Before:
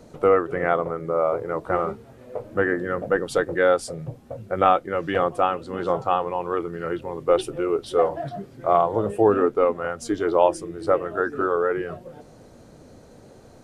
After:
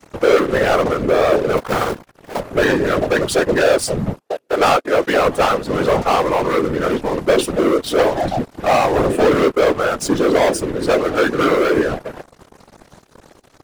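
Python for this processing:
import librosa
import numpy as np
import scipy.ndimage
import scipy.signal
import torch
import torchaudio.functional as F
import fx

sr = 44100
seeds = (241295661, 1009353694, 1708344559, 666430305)

y = fx.cycle_switch(x, sr, every=2, mode='muted', at=(1.57, 2.4))
y = fx.steep_highpass(y, sr, hz=330.0, slope=36, at=(4.2, 5.26))
y = fx.leveller(y, sr, passes=5)
y = fx.whisperise(y, sr, seeds[0])
y = F.gain(torch.from_numpy(y), -5.0).numpy()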